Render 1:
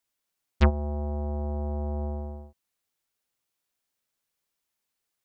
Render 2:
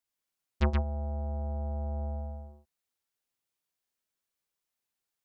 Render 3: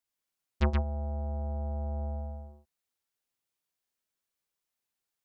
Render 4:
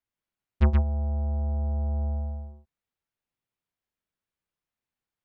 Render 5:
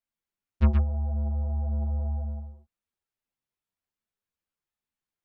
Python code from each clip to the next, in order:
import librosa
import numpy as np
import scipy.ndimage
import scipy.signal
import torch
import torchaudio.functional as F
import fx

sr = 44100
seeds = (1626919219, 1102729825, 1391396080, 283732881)

y1 = x + 10.0 ** (-4.0 / 20.0) * np.pad(x, (int(124 * sr / 1000.0), 0))[:len(x)]
y1 = F.gain(torch.from_numpy(y1), -6.5).numpy()
y2 = y1
y3 = fx.bass_treble(y2, sr, bass_db=7, treble_db=-12)
y4 = fx.ensemble(y3, sr)